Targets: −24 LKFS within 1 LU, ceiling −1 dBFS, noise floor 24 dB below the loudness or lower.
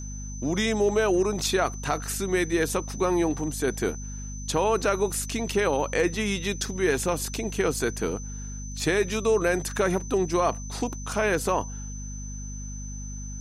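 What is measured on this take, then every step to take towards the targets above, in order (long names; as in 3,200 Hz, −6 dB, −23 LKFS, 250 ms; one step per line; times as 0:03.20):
mains hum 50 Hz; hum harmonics up to 250 Hz; level of the hum −34 dBFS; interfering tone 6,100 Hz; level of the tone −41 dBFS; integrated loudness −26.0 LKFS; sample peak −11.5 dBFS; target loudness −24.0 LKFS
→ mains-hum notches 50/100/150/200/250 Hz
notch filter 6,100 Hz, Q 30
level +2 dB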